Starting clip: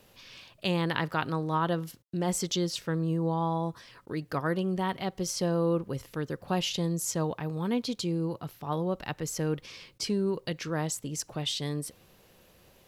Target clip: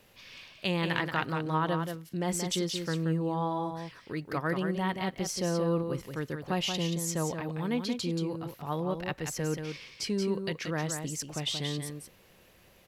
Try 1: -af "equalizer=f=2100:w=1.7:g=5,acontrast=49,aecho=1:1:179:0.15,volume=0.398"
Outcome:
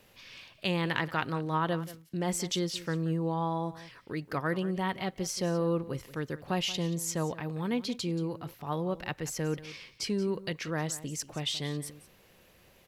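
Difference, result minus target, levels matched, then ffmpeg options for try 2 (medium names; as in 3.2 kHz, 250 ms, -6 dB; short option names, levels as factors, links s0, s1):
echo-to-direct -10 dB
-af "equalizer=f=2100:w=1.7:g=5,acontrast=49,aecho=1:1:179:0.473,volume=0.398"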